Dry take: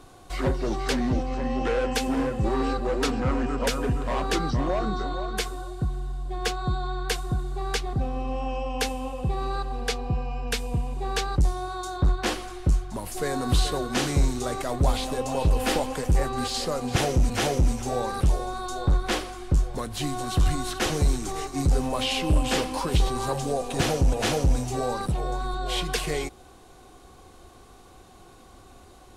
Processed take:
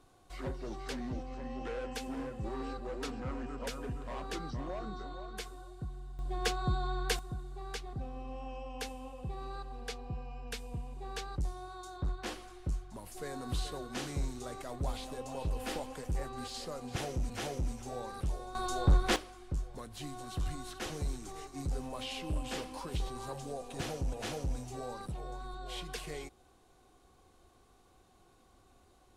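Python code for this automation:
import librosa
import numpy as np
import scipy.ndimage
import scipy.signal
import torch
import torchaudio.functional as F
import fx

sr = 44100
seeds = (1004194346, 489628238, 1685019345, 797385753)

y = fx.gain(x, sr, db=fx.steps((0.0, -14.0), (6.19, -5.0), (7.19, -13.5), (18.55, -3.0), (19.16, -14.0)))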